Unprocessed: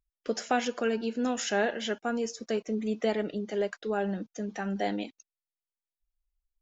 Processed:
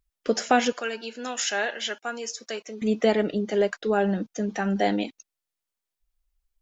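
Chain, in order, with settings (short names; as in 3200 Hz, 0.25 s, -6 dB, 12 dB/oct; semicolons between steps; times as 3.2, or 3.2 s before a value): 0.72–2.82 HPF 1500 Hz 6 dB/oct; gain +7 dB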